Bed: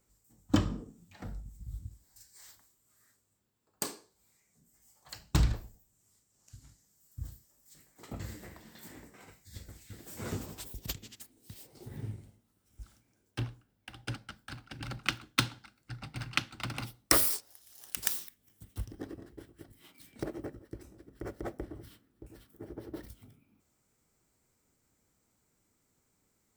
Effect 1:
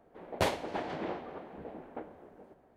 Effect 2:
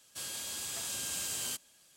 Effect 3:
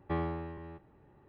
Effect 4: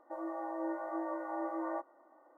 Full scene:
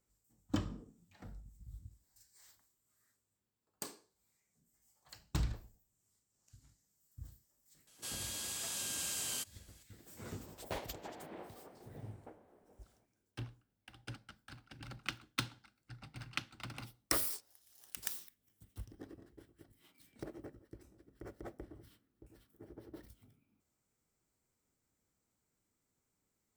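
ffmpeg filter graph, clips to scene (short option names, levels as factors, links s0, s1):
-filter_complex "[0:a]volume=0.355[s0];[2:a]atrim=end=1.96,asetpts=PTS-STARTPTS,volume=0.75,afade=t=in:d=0.004:c=hsin,afade=t=out:st=1.956:d=0.004:c=hsin,adelay=7870[s1];[1:a]atrim=end=2.76,asetpts=PTS-STARTPTS,volume=0.237,afade=t=in:d=0.004:c=hsin,afade=t=out:st=2.756:d=0.004:c=hsin,adelay=10300[s2];[s0][s1][s2]amix=inputs=3:normalize=0"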